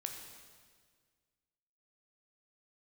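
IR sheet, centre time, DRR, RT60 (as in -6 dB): 45 ms, 3.0 dB, 1.7 s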